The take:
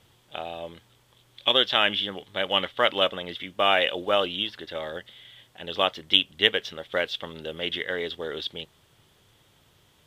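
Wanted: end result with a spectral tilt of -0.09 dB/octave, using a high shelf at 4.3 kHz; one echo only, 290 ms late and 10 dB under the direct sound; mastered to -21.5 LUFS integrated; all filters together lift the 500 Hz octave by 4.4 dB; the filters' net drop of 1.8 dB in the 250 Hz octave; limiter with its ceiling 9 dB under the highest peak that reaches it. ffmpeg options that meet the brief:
-af "equalizer=f=250:t=o:g=-5.5,equalizer=f=500:t=o:g=6.5,highshelf=f=4300:g=-6,alimiter=limit=0.237:level=0:latency=1,aecho=1:1:290:0.316,volume=2"

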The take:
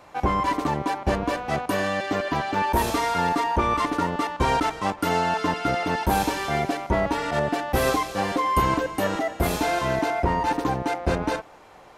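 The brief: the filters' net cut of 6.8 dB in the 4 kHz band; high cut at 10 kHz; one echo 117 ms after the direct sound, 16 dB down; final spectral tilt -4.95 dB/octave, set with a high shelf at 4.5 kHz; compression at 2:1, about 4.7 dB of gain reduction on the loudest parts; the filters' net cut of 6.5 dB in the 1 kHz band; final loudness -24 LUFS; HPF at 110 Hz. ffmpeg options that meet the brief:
-af "highpass=110,lowpass=10000,equalizer=f=1000:t=o:g=-7.5,equalizer=f=4000:t=o:g=-5,highshelf=f=4500:g=-7,acompressor=threshold=0.0316:ratio=2,aecho=1:1:117:0.158,volume=2.51"

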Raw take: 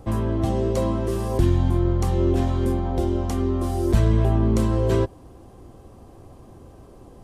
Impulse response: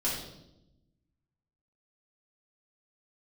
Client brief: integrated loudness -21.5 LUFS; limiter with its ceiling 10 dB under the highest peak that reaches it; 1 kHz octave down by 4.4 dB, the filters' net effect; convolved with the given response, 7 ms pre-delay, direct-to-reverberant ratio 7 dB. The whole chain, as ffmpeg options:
-filter_complex "[0:a]equalizer=f=1000:t=o:g=-6,alimiter=limit=0.178:level=0:latency=1,asplit=2[s0][s1];[1:a]atrim=start_sample=2205,adelay=7[s2];[s1][s2]afir=irnorm=-1:irlink=0,volume=0.211[s3];[s0][s3]amix=inputs=2:normalize=0,volume=1.26"

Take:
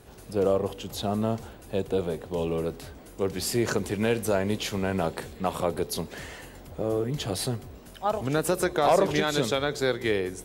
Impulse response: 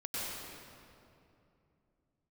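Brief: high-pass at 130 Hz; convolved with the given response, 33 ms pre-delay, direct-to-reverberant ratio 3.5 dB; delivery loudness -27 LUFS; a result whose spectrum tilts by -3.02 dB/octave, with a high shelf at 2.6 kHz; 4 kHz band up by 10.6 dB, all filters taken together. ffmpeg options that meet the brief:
-filter_complex "[0:a]highpass=130,highshelf=f=2600:g=7,equalizer=f=4000:t=o:g=7,asplit=2[s0][s1];[1:a]atrim=start_sample=2205,adelay=33[s2];[s1][s2]afir=irnorm=-1:irlink=0,volume=0.422[s3];[s0][s3]amix=inputs=2:normalize=0,volume=0.708"

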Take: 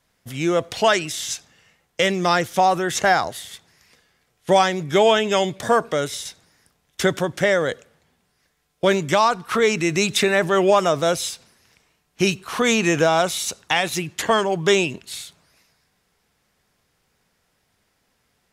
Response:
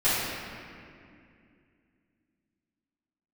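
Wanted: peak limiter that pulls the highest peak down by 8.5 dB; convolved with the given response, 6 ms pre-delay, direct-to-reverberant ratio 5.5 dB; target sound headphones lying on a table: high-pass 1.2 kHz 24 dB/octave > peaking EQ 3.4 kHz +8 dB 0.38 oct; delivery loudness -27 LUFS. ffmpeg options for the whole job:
-filter_complex "[0:a]alimiter=limit=0.2:level=0:latency=1,asplit=2[s0][s1];[1:a]atrim=start_sample=2205,adelay=6[s2];[s1][s2]afir=irnorm=-1:irlink=0,volume=0.0891[s3];[s0][s3]amix=inputs=2:normalize=0,highpass=f=1200:w=0.5412,highpass=f=1200:w=1.3066,equalizer=f=3400:t=o:w=0.38:g=8,volume=0.944"

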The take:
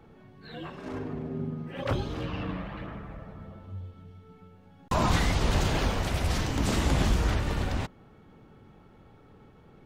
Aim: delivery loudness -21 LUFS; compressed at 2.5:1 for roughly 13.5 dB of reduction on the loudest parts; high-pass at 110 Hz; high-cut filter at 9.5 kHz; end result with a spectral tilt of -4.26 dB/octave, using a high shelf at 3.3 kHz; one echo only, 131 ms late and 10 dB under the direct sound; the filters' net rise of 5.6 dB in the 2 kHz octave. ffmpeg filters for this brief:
-af "highpass=110,lowpass=9500,equalizer=f=2000:t=o:g=9,highshelf=f=3300:g=-7,acompressor=threshold=0.00708:ratio=2.5,aecho=1:1:131:0.316,volume=11.2"

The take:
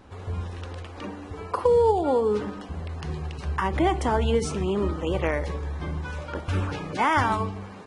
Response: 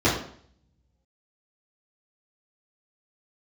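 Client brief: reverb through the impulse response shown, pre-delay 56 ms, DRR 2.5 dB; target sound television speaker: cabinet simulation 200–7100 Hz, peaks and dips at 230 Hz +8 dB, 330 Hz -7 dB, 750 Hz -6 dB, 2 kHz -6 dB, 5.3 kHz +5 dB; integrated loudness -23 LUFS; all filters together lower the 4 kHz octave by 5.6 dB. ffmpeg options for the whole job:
-filter_complex "[0:a]equalizer=f=4000:t=o:g=-9,asplit=2[s0][s1];[1:a]atrim=start_sample=2205,adelay=56[s2];[s1][s2]afir=irnorm=-1:irlink=0,volume=0.1[s3];[s0][s3]amix=inputs=2:normalize=0,highpass=f=200:w=0.5412,highpass=f=200:w=1.3066,equalizer=f=230:t=q:w=4:g=8,equalizer=f=330:t=q:w=4:g=-7,equalizer=f=750:t=q:w=4:g=-6,equalizer=f=2000:t=q:w=4:g=-6,equalizer=f=5300:t=q:w=4:g=5,lowpass=f=7100:w=0.5412,lowpass=f=7100:w=1.3066"

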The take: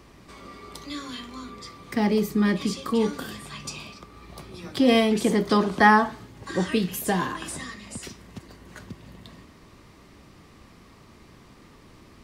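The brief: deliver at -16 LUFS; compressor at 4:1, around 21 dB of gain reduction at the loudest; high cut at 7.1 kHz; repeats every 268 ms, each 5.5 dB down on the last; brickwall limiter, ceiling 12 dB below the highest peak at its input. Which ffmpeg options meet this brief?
-af "lowpass=7100,acompressor=threshold=0.0126:ratio=4,alimiter=level_in=3.16:limit=0.0631:level=0:latency=1,volume=0.316,aecho=1:1:268|536|804|1072|1340|1608|1876:0.531|0.281|0.149|0.079|0.0419|0.0222|0.0118,volume=22.4"

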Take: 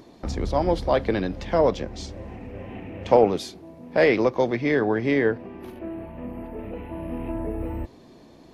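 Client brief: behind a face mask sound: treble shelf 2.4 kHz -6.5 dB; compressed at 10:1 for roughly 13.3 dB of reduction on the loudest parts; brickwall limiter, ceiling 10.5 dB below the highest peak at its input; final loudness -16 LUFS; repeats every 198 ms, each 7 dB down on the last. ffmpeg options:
-af "acompressor=threshold=0.0631:ratio=10,alimiter=limit=0.0668:level=0:latency=1,highshelf=f=2400:g=-6.5,aecho=1:1:198|396|594|792|990:0.447|0.201|0.0905|0.0407|0.0183,volume=8.41"

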